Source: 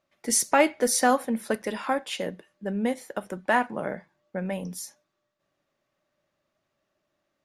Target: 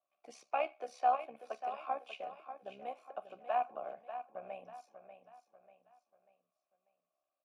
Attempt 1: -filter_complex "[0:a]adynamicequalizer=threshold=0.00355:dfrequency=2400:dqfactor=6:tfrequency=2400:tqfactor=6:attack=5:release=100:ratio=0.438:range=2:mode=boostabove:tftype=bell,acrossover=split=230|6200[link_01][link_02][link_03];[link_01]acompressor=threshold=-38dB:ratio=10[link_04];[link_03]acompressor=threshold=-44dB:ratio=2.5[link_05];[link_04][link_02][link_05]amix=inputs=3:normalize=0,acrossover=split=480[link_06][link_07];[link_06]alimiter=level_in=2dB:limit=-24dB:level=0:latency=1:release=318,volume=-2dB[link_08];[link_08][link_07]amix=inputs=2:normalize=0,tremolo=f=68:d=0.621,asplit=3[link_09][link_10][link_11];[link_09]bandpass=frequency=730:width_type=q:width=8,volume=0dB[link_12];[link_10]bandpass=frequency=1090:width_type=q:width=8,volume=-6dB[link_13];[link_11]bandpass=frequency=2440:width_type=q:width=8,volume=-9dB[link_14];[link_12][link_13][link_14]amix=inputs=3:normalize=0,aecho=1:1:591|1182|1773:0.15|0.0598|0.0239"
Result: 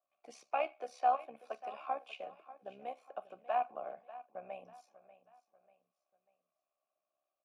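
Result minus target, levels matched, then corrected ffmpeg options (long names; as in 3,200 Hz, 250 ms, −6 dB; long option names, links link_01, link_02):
echo-to-direct −6 dB
-filter_complex "[0:a]adynamicequalizer=threshold=0.00355:dfrequency=2400:dqfactor=6:tfrequency=2400:tqfactor=6:attack=5:release=100:ratio=0.438:range=2:mode=boostabove:tftype=bell,acrossover=split=230|6200[link_01][link_02][link_03];[link_01]acompressor=threshold=-38dB:ratio=10[link_04];[link_03]acompressor=threshold=-44dB:ratio=2.5[link_05];[link_04][link_02][link_05]amix=inputs=3:normalize=0,acrossover=split=480[link_06][link_07];[link_06]alimiter=level_in=2dB:limit=-24dB:level=0:latency=1:release=318,volume=-2dB[link_08];[link_08][link_07]amix=inputs=2:normalize=0,tremolo=f=68:d=0.621,asplit=3[link_09][link_10][link_11];[link_09]bandpass=frequency=730:width_type=q:width=8,volume=0dB[link_12];[link_10]bandpass=frequency=1090:width_type=q:width=8,volume=-6dB[link_13];[link_11]bandpass=frequency=2440:width_type=q:width=8,volume=-9dB[link_14];[link_12][link_13][link_14]amix=inputs=3:normalize=0,aecho=1:1:591|1182|1773|2364:0.299|0.119|0.0478|0.0191"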